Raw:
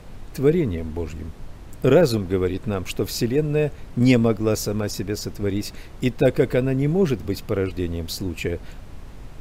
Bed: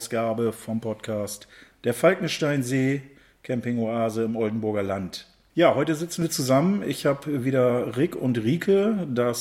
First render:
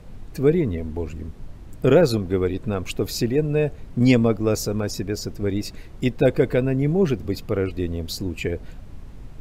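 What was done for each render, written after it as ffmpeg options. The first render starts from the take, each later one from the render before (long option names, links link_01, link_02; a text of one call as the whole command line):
ffmpeg -i in.wav -af "afftdn=noise_reduction=6:noise_floor=-41" out.wav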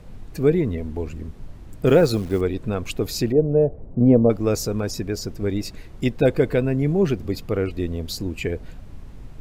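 ffmpeg -i in.wav -filter_complex "[0:a]asettb=1/sr,asplit=3[link_01][link_02][link_03];[link_01]atrim=end=1.864[link_04];[link_02]atrim=start=1.86:end=2.41,asetpts=PTS-STARTPTS,afade=type=in:duration=0.004:curve=qsin,afade=type=out:start_time=0.546:duration=0.004:curve=qsin,acrusher=bits=8:dc=4:mix=0:aa=0.000001[link_05];[link_03]atrim=start=2.406[link_06];[link_04][link_05]acrossfade=duration=0.004:curve1=hsin:curve2=qsin[link_07];[link_07][link_06]acrossfade=duration=0.004:curve1=qsin:curve2=hsin,asettb=1/sr,asplit=3[link_08][link_09][link_10];[link_08]atrim=end=3.324[link_11];[link_09]atrim=start=3.32:end=4.3,asetpts=PTS-STARTPTS,afade=type=in:duration=0.004:curve=qsin,afade=type=out:start_time=0.976:duration=0.004:curve=qsin,lowpass=frequency=610:width_type=q:width=1.7[link_12];[link_10]atrim=start=4.296[link_13];[link_11][link_12]acrossfade=duration=0.004:curve1=hsin:curve2=qsin[link_14];[link_14][link_13]acrossfade=duration=0.004:curve1=qsin:curve2=hsin" out.wav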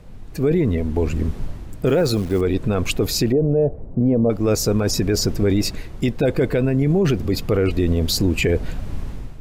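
ffmpeg -i in.wav -af "dynaudnorm=framelen=120:gausssize=7:maxgain=13.5dB,alimiter=limit=-10.5dB:level=0:latency=1:release=13" out.wav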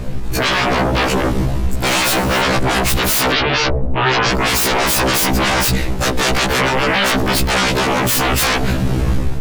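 ffmpeg -i in.wav -af "aeval=exprs='0.316*sin(PI/2*7.94*val(0)/0.316)':channel_layout=same,afftfilt=real='re*1.73*eq(mod(b,3),0)':imag='im*1.73*eq(mod(b,3),0)':win_size=2048:overlap=0.75" out.wav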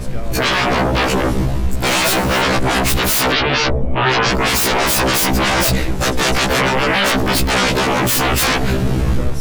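ffmpeg -i in.wav -i bed.wav -filter_complex "[1:a]volume=-7dB[link_01];[0:a][link_01]amix=inputs=2:normalize=0" out.wav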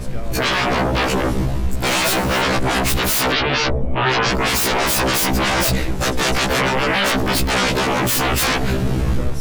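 ffmpeg -i in.wav -af "volume=-2.5dB" out.wav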